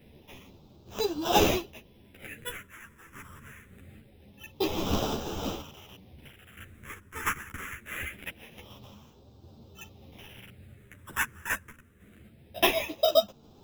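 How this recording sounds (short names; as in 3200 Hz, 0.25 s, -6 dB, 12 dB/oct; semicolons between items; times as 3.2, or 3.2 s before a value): aliases and images of a low sample rate 4400 Hz, jitter 0%; phasing stages 4, 0.24 Hz, lowest notch 700–1900 Hz; random-step tremolo; a shimmering, thickened sound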